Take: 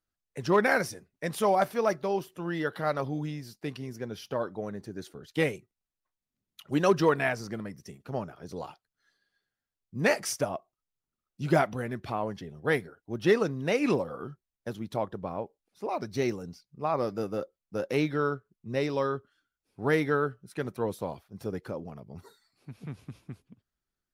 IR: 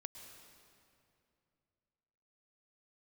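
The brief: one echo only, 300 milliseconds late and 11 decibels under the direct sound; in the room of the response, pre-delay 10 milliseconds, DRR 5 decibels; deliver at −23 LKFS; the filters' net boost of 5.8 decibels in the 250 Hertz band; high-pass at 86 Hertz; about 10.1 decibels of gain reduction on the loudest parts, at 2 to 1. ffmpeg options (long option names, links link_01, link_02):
-filter_complex "[0:a]highpass=86,equalizer=frequency=250:width_type=o:gain=8,acompressor=threshold=-34dB:ratio=2,aecho=1:1:300:0.282,asplit=2[link_01][link_02];[1:a]atrim=start_sample=2205,adelay=10[link_03];[link_02][link_03]afir=irnorm=-1:irlink=0,volume=-0.5dB[link_04];[link_01][link_04]amix=inputs=2:normalize=0,volume=11dB"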